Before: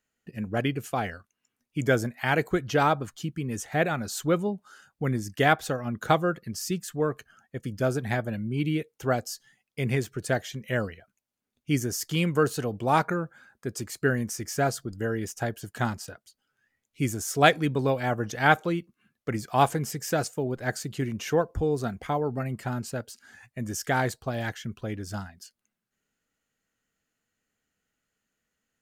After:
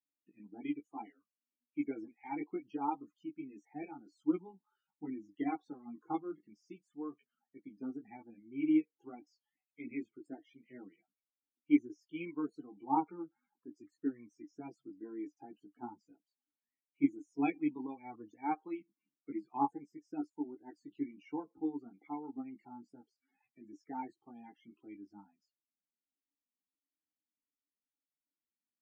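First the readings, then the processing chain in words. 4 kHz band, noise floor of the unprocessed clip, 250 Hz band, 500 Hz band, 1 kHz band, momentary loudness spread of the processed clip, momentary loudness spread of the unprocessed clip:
under -30 dB, -84 dBFS, -6.5 dB, -20.0 dB, -13.0 dB, 20 LU, 13 LU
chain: HPF 200 Hz 12 dB/oct; chorus voices 4, 0.24 Hz, delay 18 ms, depth 3.4 ms; loudest bins only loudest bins 32; vowel filter u; upward expander 1.5:1, over -48 dBFS; gain +7 dB

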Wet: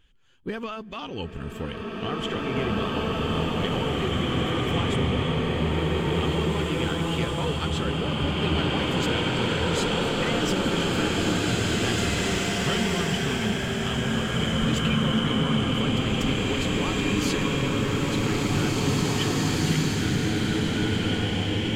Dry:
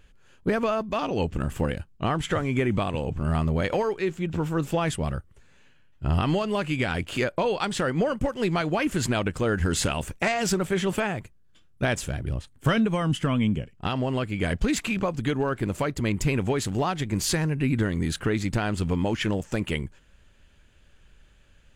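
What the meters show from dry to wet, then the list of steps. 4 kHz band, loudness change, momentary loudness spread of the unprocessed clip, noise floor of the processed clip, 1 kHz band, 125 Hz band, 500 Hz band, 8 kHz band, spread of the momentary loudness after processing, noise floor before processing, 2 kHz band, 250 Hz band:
+8.5 dB, +1.5 dB, 5 LU, -34 dBFS, +0.5 dB, +1.5 dB, 0.0 dB, +1.0 dB, 4 LU, -56 dBFS, +2.5 dB, +2.0 dB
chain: bin magnitudes rounded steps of 15 dB; thirty-one-band EQ 630 Hz -8 dB, 3150 Hz +10 dB, 10000 Hz -5 dB; bloom reverb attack 2.47 s, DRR -8 dB; gain -6.5 dB

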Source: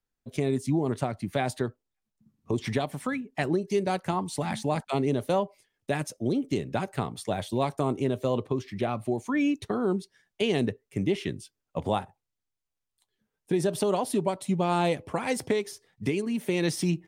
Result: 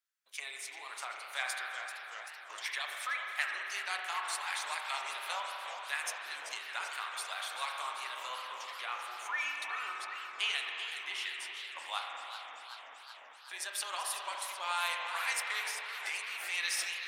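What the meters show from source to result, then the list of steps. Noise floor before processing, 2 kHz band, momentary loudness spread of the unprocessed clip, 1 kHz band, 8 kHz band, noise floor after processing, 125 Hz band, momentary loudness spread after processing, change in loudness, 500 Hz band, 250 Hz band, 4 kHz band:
-85 dBFS, +3.0 dB, 6 LU, -5.5 dB, +0.5 dB, -52 dBFS, under -40 dB, 10 LU, -8.0 dB, -24.0 dB, under -40 dB, +2.5 dB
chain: HPF 1200 Hz 24 dB/oct; spring tank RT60 3.3 s, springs 35 ms, chirp 50 ms, DRR 0.5 dB; warbling echo 0.383 s, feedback 73%, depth 165 cents, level -10 dB

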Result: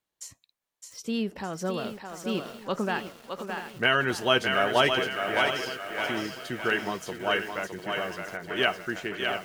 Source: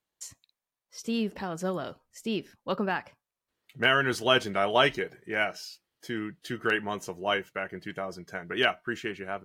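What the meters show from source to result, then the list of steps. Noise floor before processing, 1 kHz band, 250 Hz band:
under -85 dBFS, +1.5 dB, +1.0 dB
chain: thinning echo 0.613 s, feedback 43%, high-pass 370 Hz, level -4.5 dB; lo-fi delay 0.697 s, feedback 55%, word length 7-bit, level -10.5 dB

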